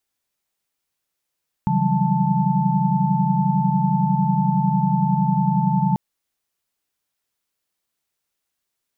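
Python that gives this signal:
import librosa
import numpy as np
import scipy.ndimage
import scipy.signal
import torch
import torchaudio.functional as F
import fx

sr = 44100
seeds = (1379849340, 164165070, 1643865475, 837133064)

y = fx.chord(sr, length_s=4.29, notes=(49, 52, 54, 55, 81), wave='sine', level_db=-22.5)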